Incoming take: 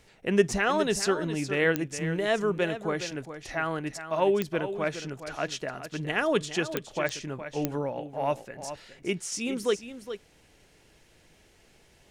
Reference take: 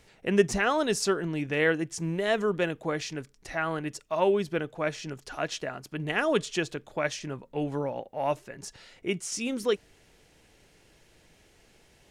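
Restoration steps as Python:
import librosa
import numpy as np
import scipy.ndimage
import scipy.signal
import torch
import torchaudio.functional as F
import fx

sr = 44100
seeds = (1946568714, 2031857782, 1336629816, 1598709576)

y = fx.fix_declick_ar(x, sr, threshold=10.0)
y = fx.fix_echo_inverse(y, sr, delay_ms=415, level_db=-11.0)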